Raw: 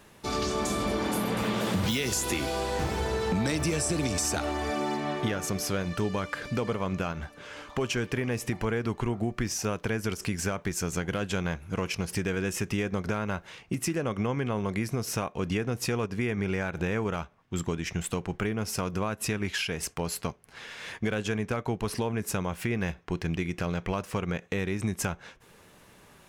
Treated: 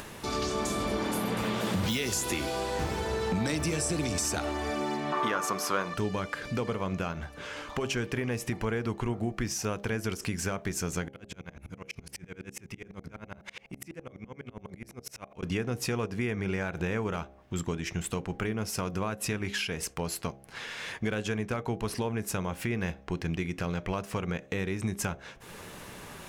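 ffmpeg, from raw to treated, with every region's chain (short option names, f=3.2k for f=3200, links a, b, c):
-filter_complex "[0:a]asettb=1/sr,asplit=3[a][b][c];[a]atrim=end=5.124[d];[b]atrim=start=5.12:end=5.94,asetpts=PTS-STARTPTS,afade=t=in:d=0.004:c=qsin,afade=t=out:st=0.816:d=0.004:c=qsin,highpass=240,equalizer=f=1.1k:t=o:w=0.82:g=14.5[e];[c]atrim=start=5.936[f];[d][e]acrossfade=d=0.004:c1=hsin:c2=qsin[g];[g][f]acrossfade=d=0.004:c1=qsin:c2=hsin,asettb=1/sr,asplit=3[h][i][j];[h]atrim=end=11.084[k];[i]atrim=start=11.08:end=15.43,asetpts=PTS-STARTPTS,afade=t=in:d=0.004:c=qsin,afade=t=out:st=4.346:d=0.004:c=qsin,acompressor=threshold=-37dB:ratio=6:attack=3.2:release=140:knee=1:detection=peak,equalizer=f=2.2k:t=o:w=0.25:g=6.5,aeval=exprs='val(0)*pow(10,-39*if(lt(mod(-12*n/s,1),2*abs(-12)/1000),1-mod(-12*n/s,1)/(2*abs(-12)/1000),(mod(-12*n/s,1)-2*abs(-12)/1000)/(1-2*abs(-12)/1000))/20)':c=same[l];[j]atrim=start=15.426[m];[k][l]acrossfade=d=0.004:c1=hsin:c2=qsin[n];[n][m]acrossfade=d=0.004:c1=qsin:c2=hsin,bandreject=f=67.36:t=h:w=4,bandreject=f=134.72:t=h:w=4,bandreject=f=202.08:t=h:w=4,bandreject=f=269.44:t=h:w=4,bandreject=f=336.8:t=h:w=4,bandreject=f=404.16:t=h:w=4,bandreject=f=471.52:t=h:w=4,bandreject=f=538.88:t=h:w=4,bandreject=f=606.24:t=h:w=4,bandreject=f=673.6:t=h:w=4,bandreject=f=740.96:t=h:w=4,bandreject=f=808.32:t=h:w=4,acompressor=mode=upward:threshold=-31dB:ratio=2.5,volume=-1.5dB"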